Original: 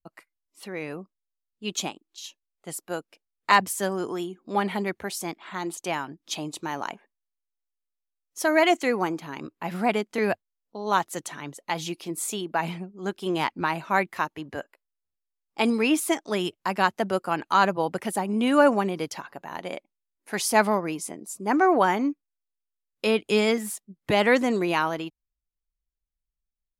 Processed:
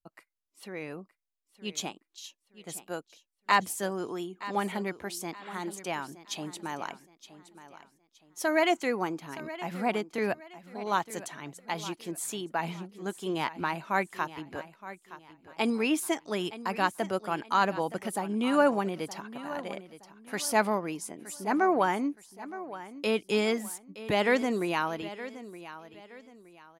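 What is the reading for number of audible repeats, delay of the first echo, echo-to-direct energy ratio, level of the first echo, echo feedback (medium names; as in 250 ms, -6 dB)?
3, 919 ms, -14.5 dB, -15.0 dB, 33%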